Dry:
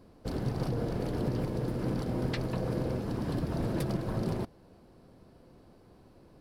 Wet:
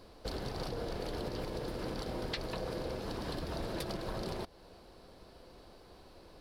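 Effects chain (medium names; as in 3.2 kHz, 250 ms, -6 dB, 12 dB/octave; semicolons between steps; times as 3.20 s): graphic EQ 125/250/4000 Hz -11/-7/+7 dB; compression 2.5:1, threshold -43 dBFS, peak gain reduction 9 dB; trim +5 dB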